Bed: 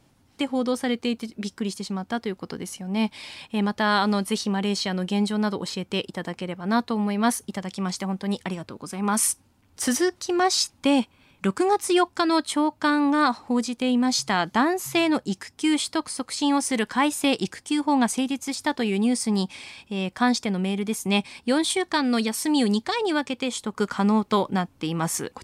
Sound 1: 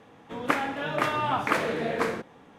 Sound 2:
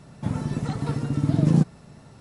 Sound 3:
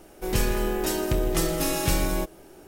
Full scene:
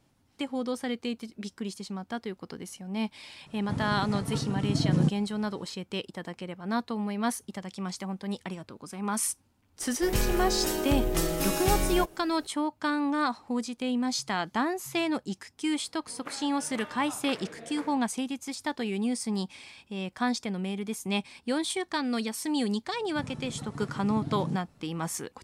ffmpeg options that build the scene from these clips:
-filter_complex "[2:a]asplit=2[a][b];[0:a]volume=-7dB[c];[b]alimiter=limit=-11dB:level=0:latency=1:release=71[d];[a]atrim=end=2.2,asetpts=PTS-STARTPTS,volume=-5.5dB,afade=t=in:d=0.004:c=hsin,afade=t=out:st=2.196:d=0.004:c=hsin,adelay=3460[e];[3:a]atrim=end=2.67,asetpts=PTS-STARTPTS,volume=-3dB,afade=t=in:d=0.004:c=hsin,afade=t=out:st=2.666:d=0.004:c=hsin,adelay=9800[f];[1:a]atrim=end=2.58,asetpts=PTS-STARTPTS,volume=-16.5dB,afade=t=in:d=0.004:c=hsin,afade=t=out:st=2.576:d=0.004:c=hsin,adelay=15770[g];[d]atrim=end=2.2,asetpts=PTS-STARTPTS,volume=-12.5dB,afade=t=in:d=0.004:c=hsin,afade=t=out:st=2.196:d=0.004:c=hsin,adelay=22930[h];[c][e][f][g][h]amix=inputs=5:normalize=0"

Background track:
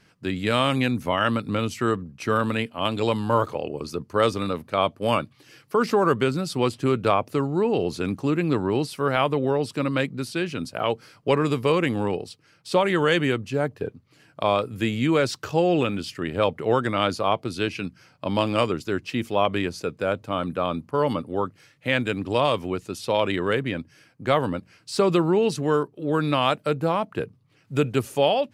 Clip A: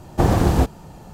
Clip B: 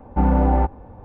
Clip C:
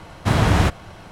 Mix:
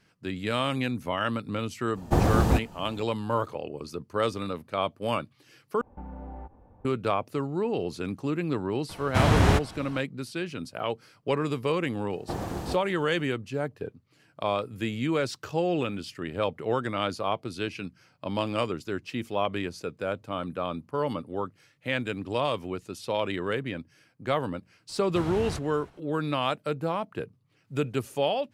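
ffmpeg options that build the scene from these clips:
-filter_complex "[1:a]asplit=2[a][b];[3:a]asplit=2[c][d];[0:a]volume=-6dB[e];[2:a]acompressor=threshold=-23dB:ratio=6:attack=3.2:release=140:knee=1:detection=peak[f];[b]lowshelf=f=120:g=-9.5[g];[d]aecho=1:1:313:0.133[h];[e]asplit=2[i][j];[i]atrim=end=5.814[k];[f]atrim=end=1.04,asetpts=PTS-STARTPTS,volume=-14dB[l];[j]atrim=start=6.846[m];[a]atrim=end=1.13,asetpts=PTS-STARTPTS,volume=-5.5dB,afade=t=in:d=0.05,afade=t=out:st=1.08:d=0.05,adelay=1930[n];[c]atrim=end=1.11,asetpts=PTS-STARTPTS,volume=-4dB,afade=t=in:d=0.004:c=hsin,afade=t=out:st=1.106:d=0.004:c=hsin,adelay=8890[o];[g]atrim=end=1.13,asetpts=PTS-STARTPTS,volume=-13.5dB,afade=t=in:d=0.004:c=hsin,afade=t=out:st=1.126:d=0.004:c=hsin,adelay=12100[p];[h]atrim=end=1.11,asetpts=PTS-STARTPTS,volume=-18dB,afade=t=in:d=0.004:c=hsin,afade=t=out:st=1.106:d=0.004:c=hsin,adelay=24890[q];[k][l]acrossfade=d=0.004:c1=hsin:c2=hsin[r];[r][m]acrossfade=d=0.004:c1=hsin:c2=hsin[s];[s][n][o][p][q]amix=inputs=5:normalize=0"

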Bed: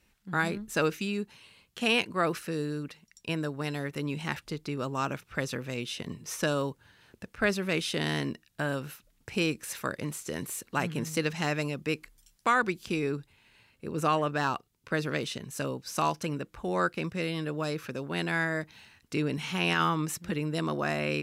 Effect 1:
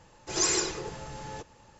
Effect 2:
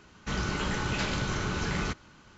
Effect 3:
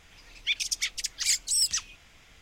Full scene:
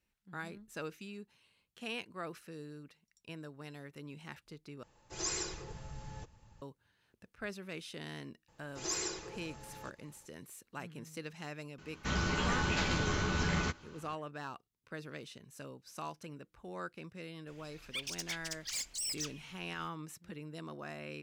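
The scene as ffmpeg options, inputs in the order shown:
-filter_complex "[1:a]asplit=2[a][b];[0:a]volume=-15dB[c];[a]asubboost=boost=8.5:cutoff=170[d];[2:a]asplit=2[e][f];[f]adelay=12,volume=-5dB[g];[e][g]amix=inputs=2:normalize=0[h];[3:a]asoftclip=type=tanh:threshold=-26.5dB[i];[c]asplit=2[j][k];[j]atrim=end=4.834[l];[d]atrim=end=1.79,asetpts=PTS-STARTPTS,volume=-10.5dB[m];[k]atrim=start=6.616[n];[b]atrim=end=1.79,asetpts=PTS-STARTPTS,volume=-10.5dB,afade=t=in:d=0.004:c=hsin,afade=t=out:st=1.786:d=0.004:c=hsin,adelay=8480[o];[h]atrim=end=2.37,asetpts=PTS-STARTPTS,volume=-3dB,afade=t=in:d=0.004:c=hsin,afade=t=out:st=2.366:d=0.004:c=hsin,adelay=519498S[p];[i]atrim=end=2.41,asetpts=PTS-STARTPTS,volume=-7.5dB,afade=t=in:d=0.004:c=hsin,afade=t=out:st=2.406:d=0.004:c=hsin,adelay=17470[q];[l][m]acrossfade=d=0.004:c1=hsin:c2=hsin[r];[r][n]acrossfade=d=0.004:c1=hsin:c2=hsin[s];[s][o][p][q]amix=inputs=4:normalize=0"

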